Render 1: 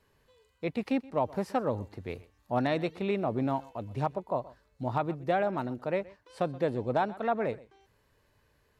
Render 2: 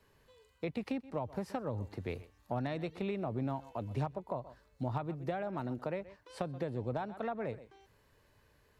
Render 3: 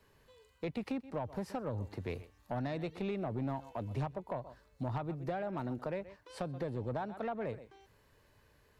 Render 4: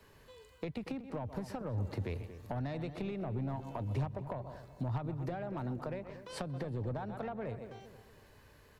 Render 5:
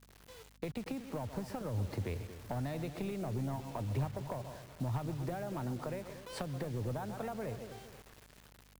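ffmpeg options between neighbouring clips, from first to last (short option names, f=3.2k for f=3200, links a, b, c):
-filter_complex "[0:a]acrossover=split=130[a][b];[b]acompressor=threshold=-35dB:ratio=10[c];[a][c]amix=inputs=2:normalize=0,volume=1dB"
-af "asoftclip=type=tanh:threshold=-29dB,volume=1dB"
-filter_complex "[0:a]acrossover=split=120[a][b];[b]acompressor=threshold=-44dB:ratio=6[c];[a][c]amix=inputs=2:normalize=0,asplit=2[d][e];[e]adelay=234,lowpass=f=1.3k:p=1,volume=-11dB,asplit=2[f][g];[g]adelay=234,lowpass=f=1.3k:p=1,volume=0.43,asplit=2[h][i];[i]adelay=234,lowpass=f=1.3k:p=1,volume=0.43,asplit=2[j][k];[k]adelay=234,lowpass=f=1.3k:p=1,volume=0.43[l];[f][h][j][l]amix=inputs=4:normalize=0[m];[d][m]amix=inputs=2:normalize=0,volume=6dB"
-af "acrusher=bits=8:mix=0:aa=0.000001,aeval=exprs='val(0)+0.000708*(sin(2*PI*50*n/s)+sin(2*PI*2*50*n/s)/2+sin(2*PI*3*50*n/s)/3+sin(2*PI*4*50*n/s)/4+sin(2*PI*5*50*n/s)/5)':c=same"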